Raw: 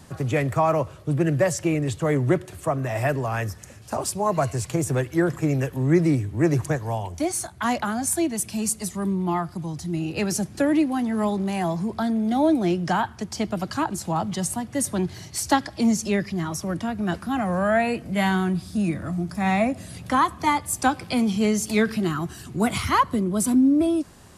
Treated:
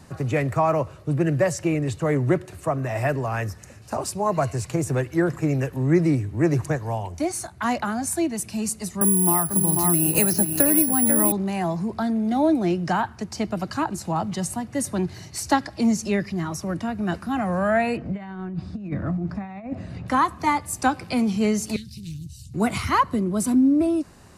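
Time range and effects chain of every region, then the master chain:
9.01–11.32 s: delay 493 ms -8 dB + careless resampling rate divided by 4×, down filtered, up zero stuff + three bands compressed up and down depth 100%
17.97–20.08 s: compressor with a negative ratio -27 dBFS, ratio -0.5 + tape spacing loss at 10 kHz 27 dB
21.76–22.54 s: inverse Chebyshev band-stop 480–1100 Hz, stop band 80 dB + bass shelf 110 Hz +4.5 dB + loudspeaker Doppler distortion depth 0.29 ms
whole clip: treble shelf 7.1 kHz -5 dB; band-stop 3.3 kHz, Q 9.3

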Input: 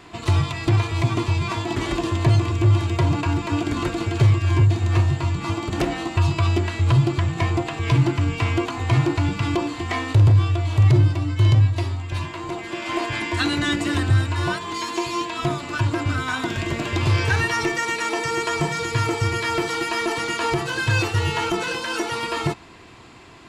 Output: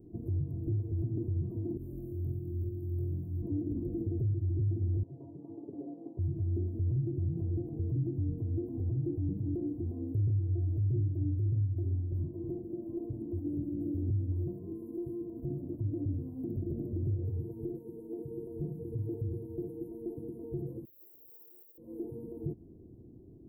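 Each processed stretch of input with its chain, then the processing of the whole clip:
1.77–3.42 s: pre-emphasis filter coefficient 0.8 + compression 2.5:1, threshold -34 dBFS + flutter echo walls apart 3.9 m, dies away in 0.66 s
5.03–6.19 s: band-pass 510–4200 Hz + comb 7.2 ms, depth 91%
20.85–21.78 s: square wave that keeps the level + resonant high-pass 1.6 kHz, resonance Q 13 + transformer saturation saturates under 2.9 kHz
whole clip: compression, threshold -22 dBFS; peak limiter -20.5 dBFS; inverse Chebyshev band-stop 1.4–6.2 kHz, stop band 70 dB; trim -3.5 dB

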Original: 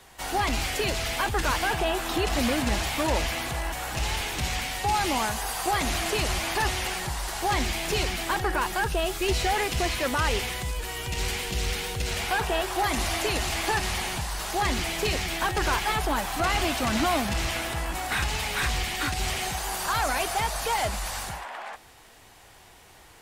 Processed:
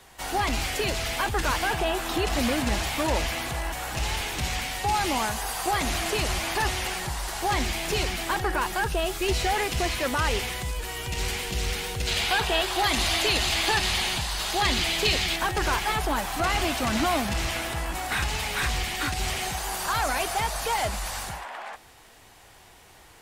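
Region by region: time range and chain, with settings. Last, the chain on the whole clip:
12.07–15.36 s: peaking EQ 3.7 kHz +8.5 dB 1.3 oct + band-stop 5.6 kHz, Q 22
whole clip: none

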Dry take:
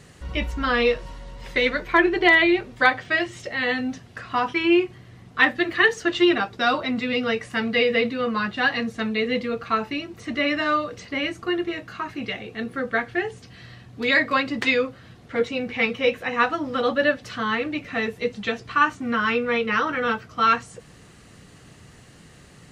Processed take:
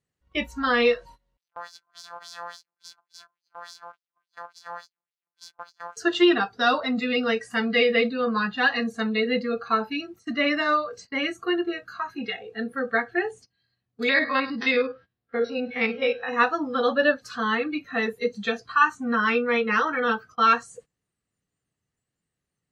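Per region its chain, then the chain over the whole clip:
1.37–5.97 s: sorted samples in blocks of 256 samples + valve stage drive 18 dB, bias 0.5 + LFO band-pass sine 3.5 Hz 930–5200 Hz
14.09–16.29 s: spectrogram pixelated in time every 50 ms + brick-wall FIR low-pass 6 kHz + delay 102 ms -15.5 dB
whole clip: spectral noise reduction 17 dB; gate -45 dBFS, range -19 dB

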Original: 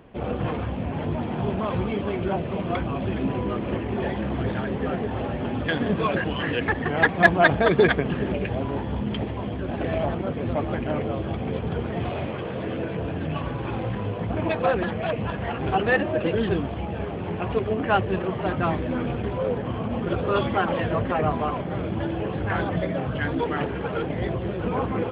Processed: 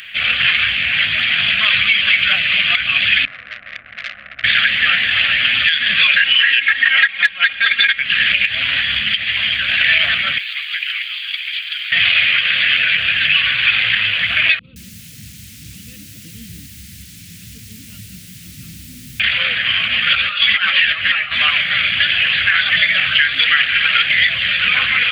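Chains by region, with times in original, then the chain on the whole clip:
3.25–4.44 s: four-pole ladder low-pass 740 Hz, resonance 60% + valve stage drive 35 dB, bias 0.8
6.25–7.99 s: tone controls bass -5 dB, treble -6 dB + comb 3.7 ms, depth 59%
10.38–11.92 s: steep high-pass 760 Hz + differentiator
14.59–19.20 s: inverse Chebyshev low-pass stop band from 650 Hz + bit-crushed delay 169 ms, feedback 35%, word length 9-bit, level -14 dB
20.15–21.41 s: compressor with a negative ratio -26 dBFS, ratio -0.5 + three-phase chorus
whole clip: inverse Chebyshev high-pass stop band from 1 kHz, stop band 40 dB; compression 8:1, threshold -41 dBFS; loudness maximiser +34 dB; trim -1 dB

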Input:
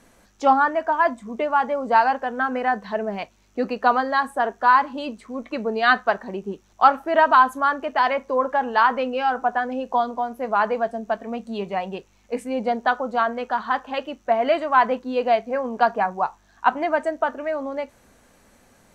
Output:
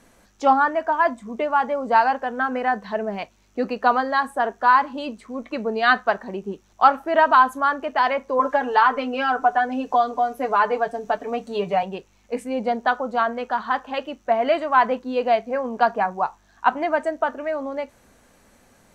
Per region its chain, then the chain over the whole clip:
8.39–11.83 s: comb 6.8 ms, depth 78% + three bands compressed up and down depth 40%
whole clip: none

